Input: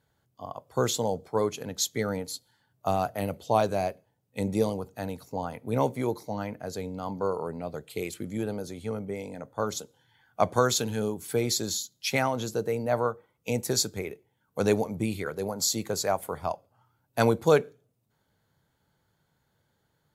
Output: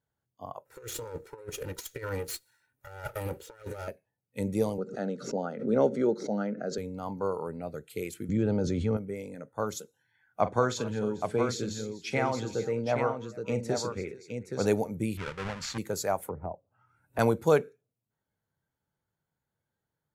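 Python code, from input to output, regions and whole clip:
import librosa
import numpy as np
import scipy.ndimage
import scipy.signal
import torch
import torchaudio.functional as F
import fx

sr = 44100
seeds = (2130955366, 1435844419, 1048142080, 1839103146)

y = fx.chain(x, sr, fx.lower_of_two(delay_ms=2.1),
    fx.highpass(hz=96.0, slope=6),
    fx.over_compress(threshold_db=-34.0, ratio=-0.5), at=(0.65, 3.88))
y = fx.chain(y, sr, fx.cabinet(low_hz=150.0, low_slope=24, high_hz=6200.0, hz=(210.0, 390.0, 550.0, 980.0, 1400.0, 2400.0), db=(8, 7, 6, -9, 8, -8)),
    fx.pre_swell(db_per_s=100.0), at=(4.78, 6.78))
y = fx.chain(y, sr, fx.lowpass(hz=6300.0, slope=24),
    fx.low_shelf(hz=330.0, db=8.0),
    fx.env_flatten(amount_pct=70), at=(8.29, 8.97))
y = fx.chain(y, sr, fx.air_absorb(metres=100.0),
    fx.echo_multitap(ms=(43, 47, 208, 442, 821), db=(-13.5, -19.5, -19.0, -20.0, -6.0)), at=(10.4, 14.66))
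y = fx.chain(y, sr, fx.halfwave_hold(),
    fx.lowpass(hz=3700.0, slope=12),
    fx.peak_eq(hz=330.0, db=-11.5, octaves=1.6), at=(15.17, 15.78))
y = fx.chain(y, sr, fx.env_lowpass_down(base_hz=590.0, full_db=-31.5),
    fx.low_shelf(hz=120.0, db=5.5),
    fx.band_squash(depth_pct=70), at=(16.28, 17.19))
y = fx.noise_reduce_blind(y, sr, reduce_db=11)
y = fx.peak_eq(y, sr, hz=4100.0, db=-5.5, octaves=1.1)
y = y * 10.0 ** (-2.0 / 20.0)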